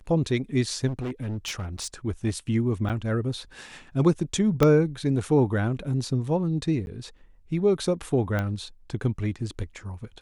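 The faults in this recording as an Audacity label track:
0.870000	1.880000	clipped -27 dBFS
2.890000	2.900000	gap 7.8 ms
4.630000	4.630000	pop -7 dBFS
6.860000	6.870000	gap 11 ms
8.390000	8.390000	pop -15 dBFS

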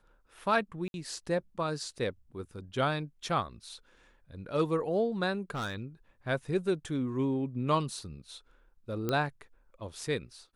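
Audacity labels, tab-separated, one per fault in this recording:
0.880000	0.940000	gap 61 ms
5.500000	5.830000	clipped -31 dBFS
9.090000	9.090000	pop -17 dBFS

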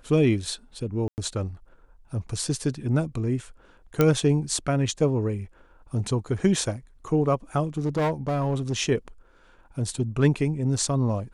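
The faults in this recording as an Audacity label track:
1.080000	1.180000	gap 99 ms
4.010000	4.010000	pop -7 dBFS
7.770000	8.730000	clipped -20.5 dBFS

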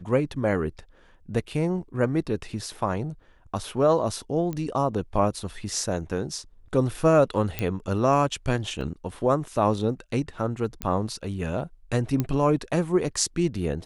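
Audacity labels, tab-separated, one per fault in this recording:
4.530000	4.530000	pop -19 dBFS
7.590000	7.590000	pop -12 dBFS
8.810000	8.810000	gap 2.4 ms
10.820000	10.820000	pop -13 dBFS
12.200000	12.200000	pop -12 dBFS

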